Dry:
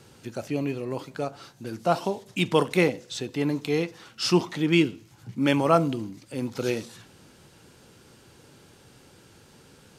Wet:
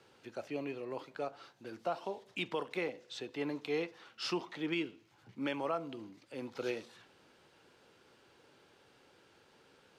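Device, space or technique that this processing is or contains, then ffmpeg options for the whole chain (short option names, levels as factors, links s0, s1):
DJ mixer with the lows and highs turned down: -filter_complex "[0:a]acrossover=split=320 4500:gain=0.224 1 0.224[s0][s1][s2];[s0][s1][s2]amix=inputs=3:normalize=0,alimiter=limit=0.126:level=0:latency=1:release=341,volume=0.447"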